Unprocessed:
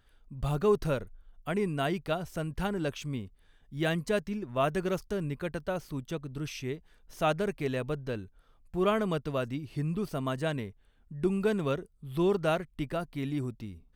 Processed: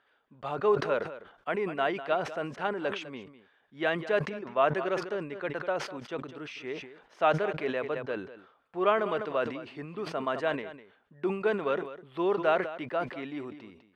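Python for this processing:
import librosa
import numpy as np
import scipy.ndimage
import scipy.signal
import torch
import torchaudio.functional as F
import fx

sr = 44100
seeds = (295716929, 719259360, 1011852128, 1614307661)

y = fx.bandpass_edges(x, sr, low_hz=480.0, high_hz=2400.0)
y = y + 10.0 ** (-15.0 / 20.0) * np.pad(y, (int(202 * sr / 1000.0), 0))[:len(y)]
y = fx.sustainer(y, sr, db_per_s=89.0)
y = F.gain(torch.from_numpy(y), 4.5).numpy()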